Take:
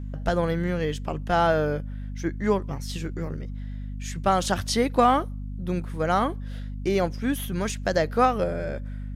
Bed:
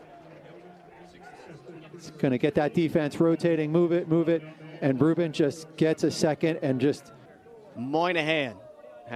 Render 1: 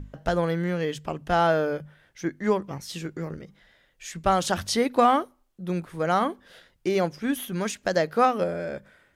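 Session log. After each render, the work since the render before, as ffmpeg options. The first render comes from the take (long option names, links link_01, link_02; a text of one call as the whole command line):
ffmpeg -i in.wav -af "bandreject=frequency=50:width_type=h:width=6,bandreject=frequency=100:width_type=h:width=6,bandreject=frequency=150:width_type=h:width=6,bandreject=frequency=200:width_type=h:width=6,bandreject=frequency=250:width_type=h:width=6" out.wav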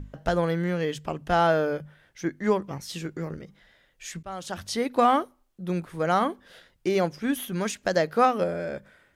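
ffmpeg -i in.wav -filter_complex "[0:a]asplit=2[link_01][link_02];[link_01]atrim=end=4.23,asetpts=PTS-STARTPTS,afade=type=out:start_time=4.226:duration=0.004:curve=hsin:silence=0.0944061[link_03];[link_02]atrim=start=4.23,asetpts=PTS-STARTPTS,afade=type=in:duration=0.95:silence=0.0944061[link_04];[link_03][link_04]concat=n=2:v=0:a=1" out.wav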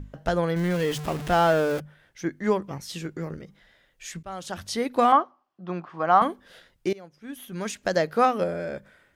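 ffmpeg -i in.wav -filter_complex "[0:a]asettb=1/sr,asplit=3[link_01][link_02][link_03];[link_01]atrim=end=0.564[link_04];[link_02]atrim=start=0.56:end=1.8,asetpts=PTS-STARTPTS,afade=type=in:duration=0.004:curve=qsin,afade=type=out:start_time=1.236:duration=0.004:curve=qsin,aeval=exprs='val(0)+0.5*0.0316*sgn(val(0))':channel_layout=same[link_05];[link_03]atrim=start=1.796[link_06];[link_04][link_05]acrossfade=duration=0.004:curve1=hsin:curve2=qsin[link_07];[link_07][link_06]acrossfade=duration=0.004:curve1=qsin:curve2=hsin,asettb=1/sr,asplit=3[link_08][link_09][link_10];[link_08]atrim=end=5.124[link_11];[link_09]atrim=start=5.12:end=6.22,asetpts=PTS-STARTPTS,afade=type=in:duration=0.004:curve=qsin,afade=type=out:start_time=1.096:duration=0.004:curve=qsin,highpass=210,equalizer=frequency=240:width_type=q:width=4:gain=-4,equalizer=frequency=460:width_type=q:width=4:gain=-8,equalizer=frequency=750:width_type=q:width=4:gain=7,equalizer=frequency=1100:width_type=q:width=4:gain=10,equalizer=frequency=2200:width_type=q:width=4:gain=-5,equalizer=frequency=3800:width_type=q:width=4:gain=-8,lowpass=frequency=4500:width=0.5412,lowpass=frequency=4500:width=1.3066[link_12];[link_10]atrim=start=6.216[link_13];[link_11][link_12]acrossfade=duration=0.004:curve1=hsin:curve2=qsin[link_14];[link_14][link_13]acrossfade=duration=0.004:curve1=qsin:curve2=hsin,asplit=2[link_15][link_16];[link_15]atrim=end=6.93,asetpts=PTS-STARTPTS,afade=type=out:start_time=6.926:duration=0.004:curve=hsin:silence=0.0794328[link_17];[link_16]atrim=start=6.93,asetpts=PTS-STARTPTS,afade=type=in:duration=0.86:curve=qua:silence=0.0794328[link_18];[link_17][link_18]concat=n=2:v=0:a=1" out.wav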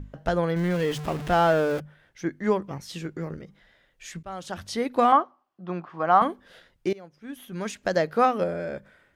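ffmpeg -i in.wav -af "highshelf=frequency=4700:gain=-5.5" out.wav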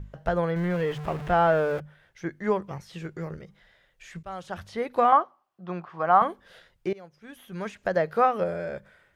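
ffmpeg -i in.wav -filter_complex "[0:a]acrossover=split=2600[link_01][link_02];[link_02]acompressor=threshold=-52dB:ratio=4:attack=1:release=60[link_03];[link_01][link_03]amix=inputs=2:normalize=0,equalizer=frequency=270:width_type=o:width=0.52:gain=-10" out.wav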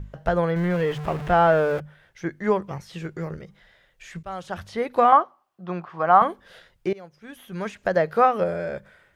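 ffmpeg -i in.wav -af "volume=3.5dB" out.wav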